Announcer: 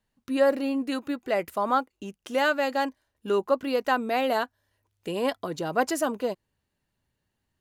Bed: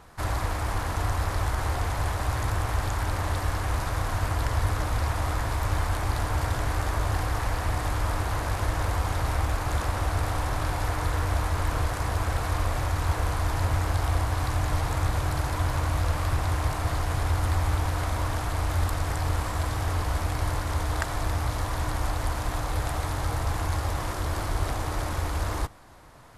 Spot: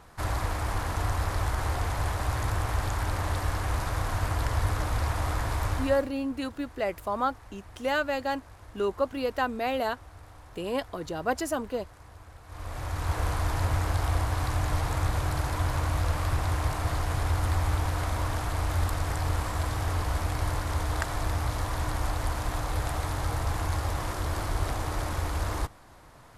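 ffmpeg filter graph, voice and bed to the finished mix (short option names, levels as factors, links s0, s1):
-filter_complex "[0:a]adelay=5500,volume=0.668[s0];[1:a]volume=8.91,afade=t=out:st=5.65:d=0.45:silence=0.0944061,afade=t=in:st=12.46:d=0.79:silence=0.0944061[s1];[s0][s1]amix=inputs=2:normalize=0"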